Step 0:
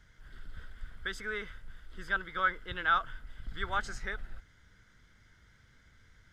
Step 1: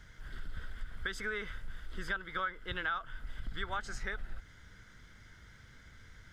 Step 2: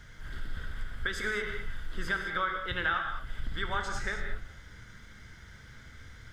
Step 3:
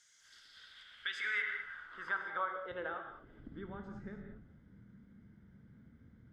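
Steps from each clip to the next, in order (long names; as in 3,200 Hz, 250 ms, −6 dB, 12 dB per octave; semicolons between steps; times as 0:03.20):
downward compressor 5 to 1, threshold −40 dBFS, peak gain reduction 16 dB; level +6 dB
reverb whose tail is shaped and stops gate 240 ms flat, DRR 3 dB; level +4 dB
band-pass filter sweep 7,200 Hz → 210 Hz, 0:00.11–0:03.81; level +2.5 dB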